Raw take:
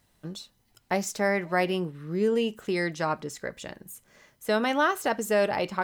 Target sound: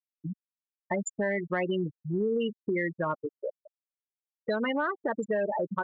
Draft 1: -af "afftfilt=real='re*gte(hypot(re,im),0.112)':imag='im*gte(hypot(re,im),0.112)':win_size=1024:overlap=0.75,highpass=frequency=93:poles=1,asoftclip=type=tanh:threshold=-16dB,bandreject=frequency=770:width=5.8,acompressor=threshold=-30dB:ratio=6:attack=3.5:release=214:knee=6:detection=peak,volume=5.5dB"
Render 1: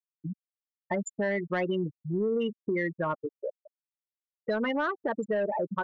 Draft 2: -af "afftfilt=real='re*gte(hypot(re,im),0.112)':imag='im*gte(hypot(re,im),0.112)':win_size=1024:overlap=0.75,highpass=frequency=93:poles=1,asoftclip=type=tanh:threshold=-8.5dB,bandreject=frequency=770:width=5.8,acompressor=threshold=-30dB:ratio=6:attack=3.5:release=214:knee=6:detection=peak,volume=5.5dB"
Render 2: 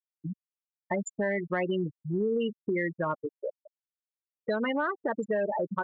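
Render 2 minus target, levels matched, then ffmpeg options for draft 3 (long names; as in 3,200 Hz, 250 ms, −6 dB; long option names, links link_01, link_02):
8,000 Hz band −4.0 dB
-af "afftfilt=real='re*gte(hypot(re,im),0.112)':imag='im*gte(hypot(re,im),0.112)':win_size=1024:overlap=0.75,highpass=frequency=93:poles=1,highshelf=frequency=5500:gain=7.5,asoftclip=type=tanh:threshold=-8.5dB,bandreject=frequency=770:width=5.8,acompressor=threshold=-30dB:ratio=6:attack=3.5:release=214:knee=6:detection=peak,volume=5.5dB"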